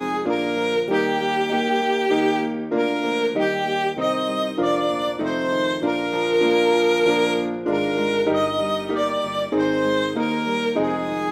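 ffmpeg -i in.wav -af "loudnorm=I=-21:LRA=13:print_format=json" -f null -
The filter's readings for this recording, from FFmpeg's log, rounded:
"input_i" : "-21.6",
"input_tp" : "-7.6",
"input_lra" : "1.8",
"input_thresh" : "-31.6",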